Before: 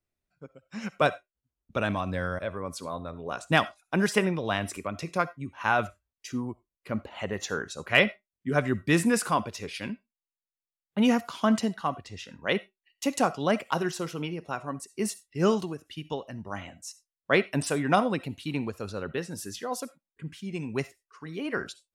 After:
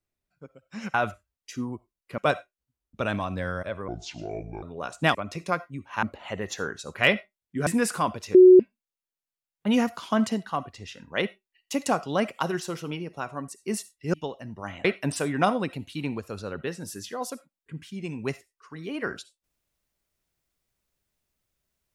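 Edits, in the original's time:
0:02.64–0:03.11: play speed 63%
0:03.63–0:04.82: remove
0:05.70–0:06.94: move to 0:00.94
0:08.58–0:08.98: remove
0:09.66–0:09.91: beep over 368 Hz −8 dBFS
0:15.45–0:16.02: remove
0:16.73–0:17.35: remove

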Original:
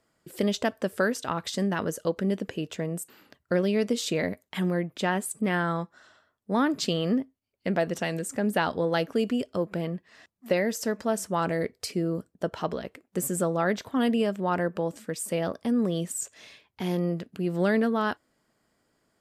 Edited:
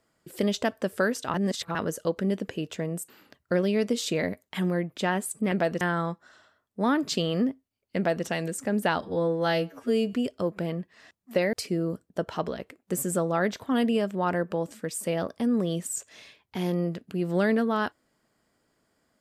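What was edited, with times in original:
0:01.34–0:01.75: reverse
0:07.68–0:07.97: duplicate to 0:05.52
0:08.72–0:09.28: time-stretch 2×
0:10.68–0:11.78: remove

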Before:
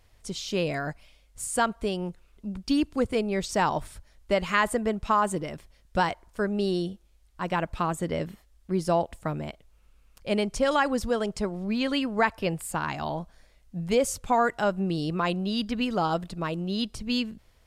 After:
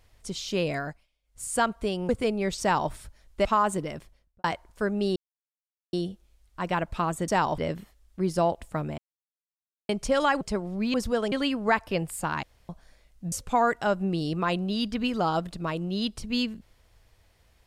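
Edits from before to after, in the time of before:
0:00.78–0:01.52: duck −20 dB, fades 0.29 s
0:02.09–0:03.00: remove
0:03.52–0:03.82: duplicate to 0:08.09
0:04.36–0:05.03: remove
0:05.55–0:06.02: fade out and dull
0:06.74: splice in silence 0.77 s
0:09.49–0:10.40: silence
0:10.92–0:11.30: move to 0:11.83
0:12.94–0:13.20: fill with room tone
0:13.83–0:14.09: remove

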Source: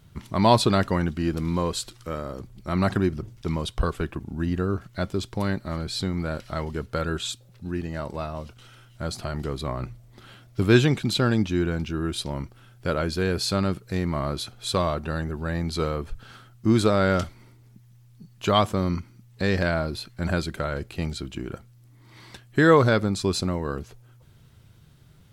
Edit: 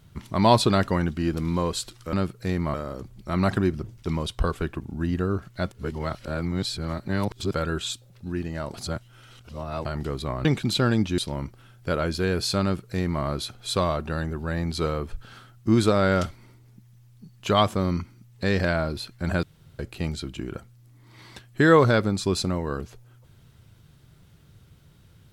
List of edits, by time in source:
0:05.11–0:06.93: reverse
0:08.13–0:09.24: reverse
0:09.84–0:10.85: remove
0:11.58–0:12.16: remove
0:13.60–0:14.21: duplicate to 0:02.13
0:20.41–0:20.77: fill with room tone

